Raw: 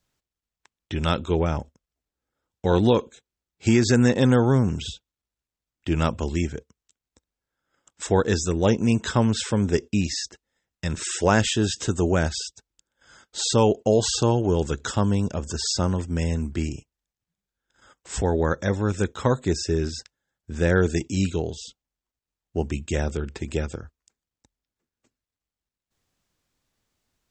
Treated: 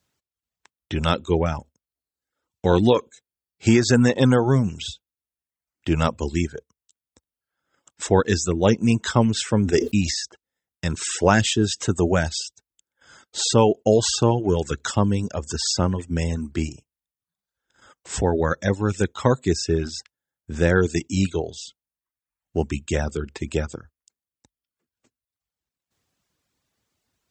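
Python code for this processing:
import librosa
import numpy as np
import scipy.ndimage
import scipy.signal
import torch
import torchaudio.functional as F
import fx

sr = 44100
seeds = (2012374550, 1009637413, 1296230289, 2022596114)

y = fx.sustainer(x, sr, db_per_s=60.0, at=(9.54, 10.11))
y = fx.dereverb_blind(y, sr, rt60_s=0.8)
y = scipy.signal.sosfilt(scipy.signal.butter(2, 61.0, 'highpass', fs=sr, output='sos'), y)
y = y * librosa.db_to_amplitude(3.0)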